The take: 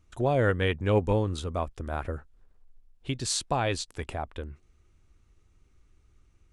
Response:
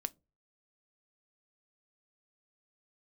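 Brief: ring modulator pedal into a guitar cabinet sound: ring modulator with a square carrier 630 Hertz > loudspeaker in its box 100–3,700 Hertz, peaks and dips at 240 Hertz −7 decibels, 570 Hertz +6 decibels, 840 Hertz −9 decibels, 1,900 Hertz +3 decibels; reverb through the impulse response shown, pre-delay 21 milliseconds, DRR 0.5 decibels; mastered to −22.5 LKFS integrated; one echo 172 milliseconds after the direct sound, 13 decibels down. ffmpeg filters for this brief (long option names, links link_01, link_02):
-filter_complex "[0:a]aecho=1:1:172:0.224,asplit=2[link_01][link_02];[1:a]atrim=start_sample=2205,adelay=21[link_03];[link_02][link_03]afir=irnorm=-1:irlink=0,volume=0.5dB[link_04];[link_01][link_04]amix=inputs=2:normalize=0,aeval=exprs='val(0)*sgn(sin(2*PI*630*n/s))':channel_layout=same,highpass=100,equalizer=frequency=240:width_type=q:width=4:gain=-7,equalizer=frequency=570:width_type=q:width=4:gain=6,equalizer=frequency=840:width_type=q:width=4:gain=-9,equalizer=frequency=1900:width_type=q:width=4:gain=3,lowpass=frequency=3700:width=0.5412,lowpass=frequency=3700:width=1.3066,volume=3dB"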